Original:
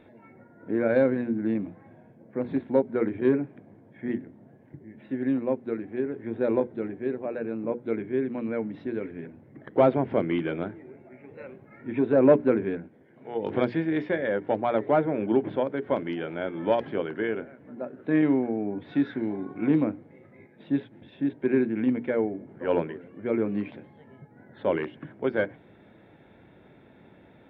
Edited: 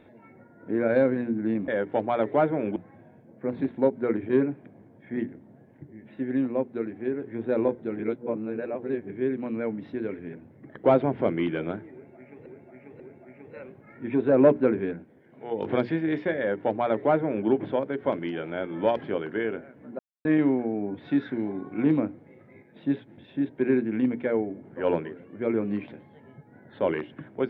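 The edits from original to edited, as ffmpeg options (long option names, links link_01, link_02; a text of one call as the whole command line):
ffmpeg -i in.wav -filter_complex "[0:a]asplit=9[link_01][link_02][link_03][link_04][link_05][link_06][link_07][link_08][link_09];[link_01]atrim=end=1.682[link_10];[link_02]atrim=start=14.228:end=15.312[link_11];[link_03]atrim=start=1.678:end=6.912[link_12];[link_04]atrim=start=6.908:end=8.022,asetpts=PTS-STARTPTS,areverse[link_13];[link_05]atrim=start=8.018:end=11.382[link_14];[link_06]atrim=start=10.838:end=11.382[link_15];[link_07]atrim=start=10.838:end=17.83,asetpts=PTS-STARTPTS,afade=type=out:start_time=6.988:duration=0.004:curve=hsin[link_16];[link_08]atrim=start=17.83:end=18.09,asetpts=PTS-STARTPTS,volume=0[link_17];[link_09]atrim=start=18.09,asetpts=PTS-STARTPTS,afade=type=in:duration=0.004:curve=hsin[link_18];[link_10][link_11]acrossfade=duration=0.004:curve1=hsin:curve2=hsin[link_19];[link_19][link_12]acrossfade=duration=0.004:curve1=hsin:curve2=hsin[link_20];[link_20][link_13]acrossfade=duration=0.004:curve1=hsin:curve2=hsin[link_21];[link_21][link_14]acrossfade=duration=0.004:curve1=hsin:curve2=hsin[link_22];[link_22][link_15]acrossfade=duration=0.004:curve1=hsin:curve2=hsin[link_23];[link_16][link_17][link_18]concat=n=3:v=0:a=1[link_24];[link_23][link_24]acrossfade=duration=0.004:curve1=hsin:curve2=hsin" out.wav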